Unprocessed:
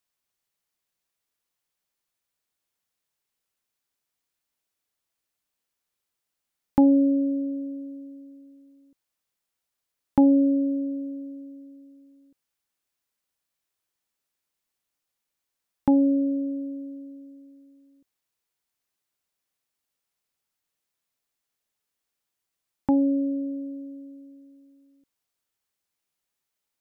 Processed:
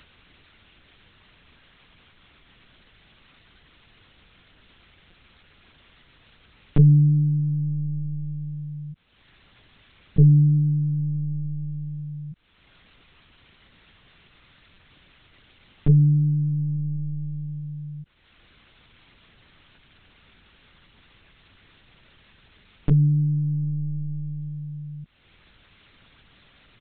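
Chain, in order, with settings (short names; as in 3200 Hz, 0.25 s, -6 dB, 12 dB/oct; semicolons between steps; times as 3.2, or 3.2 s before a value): HPF 92 Hz 12 dB/oct; bell 1200 Hz -10 dB 1.1 oct; upward compressor, threshold -23 dBFS; small resonant body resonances 350/670 Hz, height 9 dB, ringing for 25 ms; pitch shift -11 st; LPC vocoder at 8 kHz pitch kept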